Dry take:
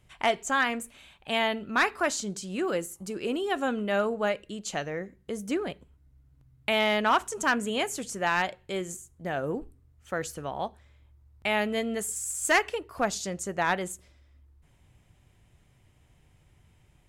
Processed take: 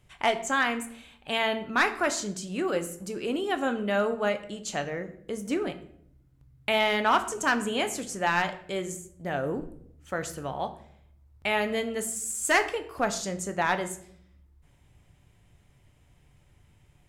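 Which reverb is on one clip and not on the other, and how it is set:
rectangular room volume 120 cubic metres, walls mixed, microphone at 0.33 metres

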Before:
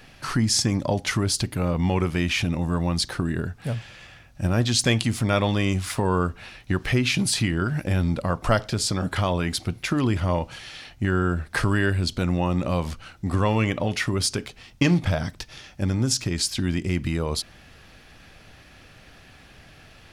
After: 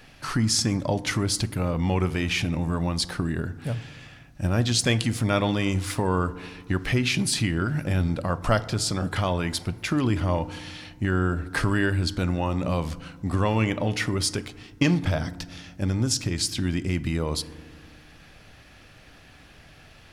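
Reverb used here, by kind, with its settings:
feedback delay network reverb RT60 1.5 s, low-frequency decay 1.6×, high-frequency decay 0.35×, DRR 15 dB
level −1.5 dB

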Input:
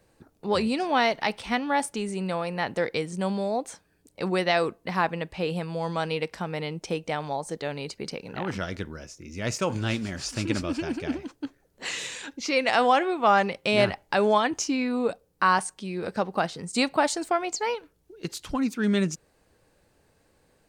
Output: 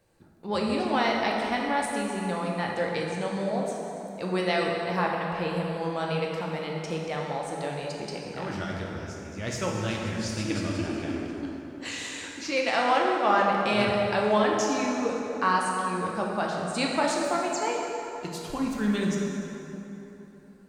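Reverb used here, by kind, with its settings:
dense smooth reverb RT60 3.4 s, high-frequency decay 0.6×, DRR −2 dB
level −5 dB

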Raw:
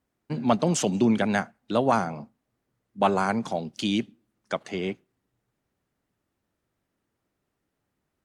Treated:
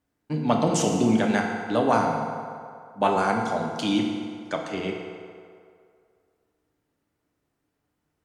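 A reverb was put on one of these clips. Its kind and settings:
feedback delay network reverb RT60 2.3 s, low-frequency decay 0.7×, high-frequency decay 0.6×, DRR 0.5 dB
level −1 dB

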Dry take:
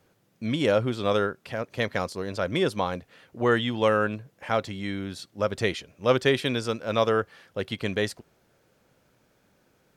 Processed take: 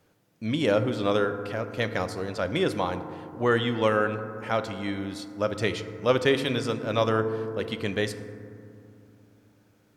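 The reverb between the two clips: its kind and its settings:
feedback delay network reverb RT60 2.5 s, low-frequency decay 1.55×, high-frequency decay 0.3×, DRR 9 dB
level −1 dB

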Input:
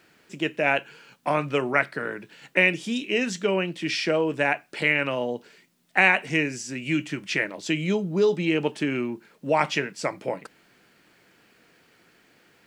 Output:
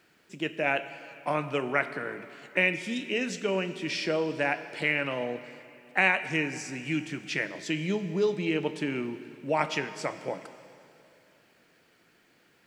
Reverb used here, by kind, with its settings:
dense smooth reverb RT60 2.7 s, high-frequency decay 1×, DRR 11 dB
level −5 dB

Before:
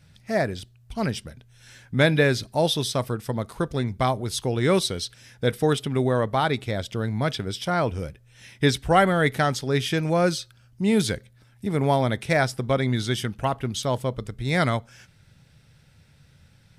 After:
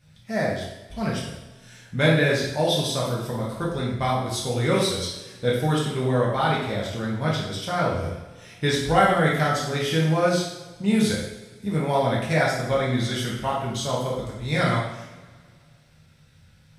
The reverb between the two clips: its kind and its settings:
coupled-rooms reverb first 0.79 s, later 2.2 s, from −17 dB, DRR −5.5 dB
level −6 dB

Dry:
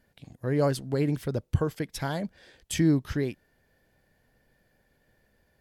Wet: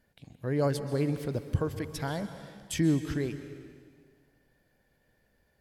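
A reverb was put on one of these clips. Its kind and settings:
dense smooth reverb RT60 1.8 s, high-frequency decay 0.95×, pre-delay 115 ms, DRR 10 dB
level −3 dB

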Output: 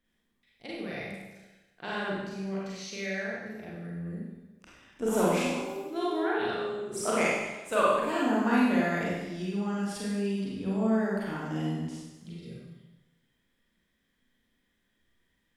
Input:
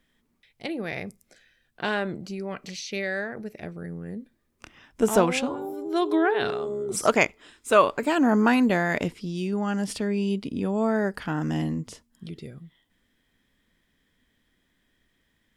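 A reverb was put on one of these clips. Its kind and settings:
four-comb reverb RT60 1.1 s, combs from 32 ms, DRR −6.5 dB
level −12 dB

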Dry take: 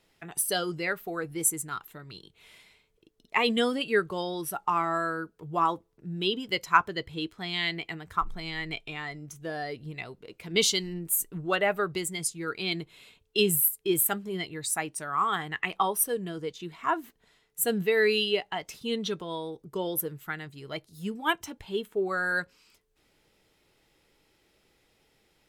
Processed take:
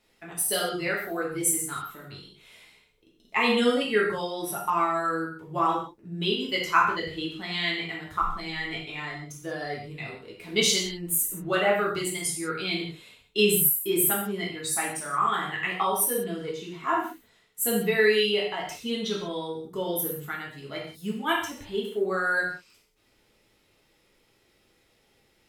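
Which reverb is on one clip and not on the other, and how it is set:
reverb whose tail is shaped and stops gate 210 ms falling, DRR −4 dB
level −3 dB

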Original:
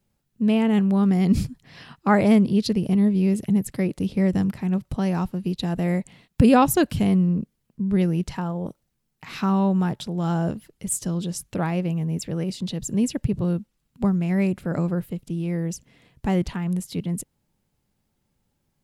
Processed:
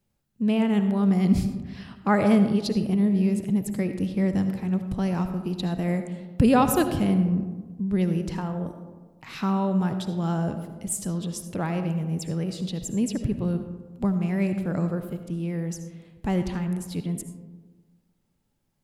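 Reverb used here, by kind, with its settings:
comb and all-pass reverb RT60 1.4 s, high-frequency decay 0.35×, pre-delay 35 ms, DRR 8 dB
level −3 dB

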